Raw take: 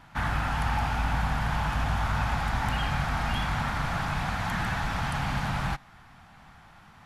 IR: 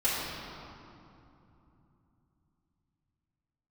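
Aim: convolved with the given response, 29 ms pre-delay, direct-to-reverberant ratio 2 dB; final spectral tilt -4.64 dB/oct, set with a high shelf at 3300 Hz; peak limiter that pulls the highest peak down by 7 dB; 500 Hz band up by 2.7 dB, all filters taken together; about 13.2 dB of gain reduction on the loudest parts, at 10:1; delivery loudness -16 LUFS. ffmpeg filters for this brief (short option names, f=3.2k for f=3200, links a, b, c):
-filter_complex "[0:a]equalizer=f=500:t=o:g=3.5,highshelf=f=3.3k:g=8.5,acompressor=threshold=-36dB:ratio=10,alimiter=level_in=8dB:limit=-24dB:level=0:latency=1,volume=-8dB,asplit=2[a][b];[1:a]atrim=start_sample=2205,adelay=29[c];[b][c]afir=irnorm=-1:irlink=0,volume=-13dB[d];[a][d]amix=inputs=2:normalize=0,volume=23dB"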